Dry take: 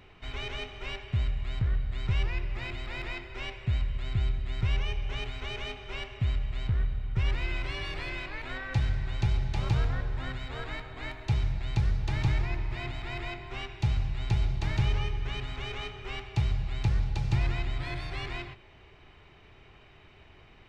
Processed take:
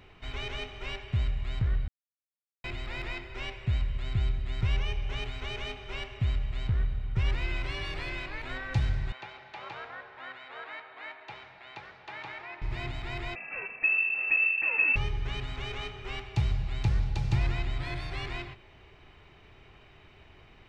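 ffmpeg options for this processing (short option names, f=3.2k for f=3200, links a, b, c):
-filter_complex "[0:a]asettb=1/sr,asplit=3[a][b][c];[a]atrim=end=9.124[d];[b]atrim=start=9.12:end=12.62,asetpts=PTS-STARTPTS,afade=t=in:d=0.004:c=qsin,afade=t=out:st=3.496:d=0.004:c=qsin,highpass=670,lowpass=2.6k[e];[c]atrim=start=12.616[f];[d][e]acrossfade=d=0.004:c1=hsin:c2=qsin[g];[g][f]acrossfade=d=0.004:c1=qsin:c2=hsin,asettb=1/sr,asplit=3[h][i][j];[h]atrim=end=13.354[k];[i]atrim=start=13.35:end=14.96,asetpts=PTS-STARTPTS,afade=t=in:d=0.004:c=qsin,afade=t=out:st=1.606:d=0.004:c=qsin,lowpass=f=2.3k:t=q:w=0.5098,lowpass=f=2.3k:t=q:w=0.6013,lowpass=f=2.3k:t=q:w=0.9,lowpass=f=2.3k:t=q:w=2.563,afreqshift=-2700[l];[j]atrim=start=14.956[m];[k][l]acrossfade=d=0.004:c1=hsin:c2=qsin[n];[n][m]acrossfade=d=0.004:c1=qsin:c2=hsin,asplit=3[o][p][q];[o]atrim=end=1.88,asetpts=PTS-STARTPTS,afade=t=out:st=1.876:d=0.004:c=hsin[r];[p]atrim=start=1.88:end=2.64,asetpts=PTS-STARTPTS,volume=0[s];[q]atrim=start=2.64,asetpts=PTS-STARTPTS,afade=t=in:d=0.004:c=hsin[t];[r][s][t]concat=n=3:v=0:a=1"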